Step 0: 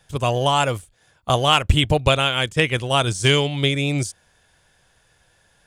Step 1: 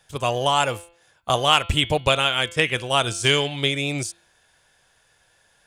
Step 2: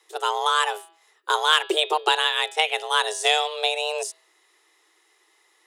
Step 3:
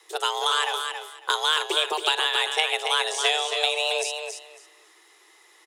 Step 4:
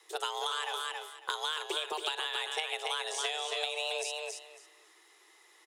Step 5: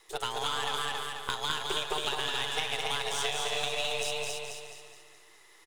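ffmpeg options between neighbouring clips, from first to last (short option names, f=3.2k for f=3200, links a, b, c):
-af "lowshelf=f=290:g=-8.5,bandreject=f=170.4:t=h:w=4,bandreject=f=340.8:t=h:w=4,bandreject=f=511.2:t=h:w=4,bandreject=f=681.6:t=h:w=4,bandreject=f=852:t=h:w=4,bandreject=f=1.0224k:t=h:w=4,bandreject=f=1.1928k:t=h:w=4,bandreject=f=1.3632k:t=h:w=4,bandreject=f=1.5336k:t=h:w=4,bandreject=f=1.704k:t=h:w=4,bandreject=f=1.8744k:t=h:w=4,bandreject=f=2.0448k:t=h:w=4,bandreject=f=2.2152k:t=h:w=4,bandreject=f=2.3856k:t=h:w=4,bandreject=f=2.556k:t=h:w=4,bandreject=f=2.7264k:t=h:w=4,bandreject=f=2.8968k:t=h:w=4,bandreject=f=3.0672k:t=h:w=4,bandreject=f=3.2376k:t=h:w=4,bandreject=f=3.408k:t=h:w=4,bandreject=f=3.5784k:t=h:w=4,bandreject=f=3.7488k:t=h:w=4,bandreject=f=3.9192k:t=h:w=4,bandreject=f=4.0896k:t=h:w=4,bandreject=f=4.26k:t=h:w=4,bandreject=f=4.4304k:t=h:w=4"
-af "afreqshift=310,volume=-1.5dB"
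-filter_complex "[0:a]acrossover=split=390|1700|6100[a][b][c][d];[a]acompressor=threshold=-49dB:ratio=4[e];[b]acompressor=threshold=-36dB:ratio=4[f];[c]acompressor=threshold=-29dB:ratio=4[g];[d]acompressor=threshold=-44dB:ratio=4[h];[e][f][g][h]amix=inputs=4:normalize=0,asplit=2[i][j];[j]aecho=0:1:275|550|825:0.473|0.0899|0.0171[k];[i][k]amix=inputs=2:normalize=0,volume=6dB"
-af "acompressor=threshold=-25dB:ratio=6,volume=-5.5dB"
-af "aeval=exprs='if(lt(val(0),0),0.447*val(0),val(0))':c=same,aecho=1:1:211|422|633|844|1055|1266:0.631|0.29|0.134|0.0614|0.0283|0.013,volume=3.5dB"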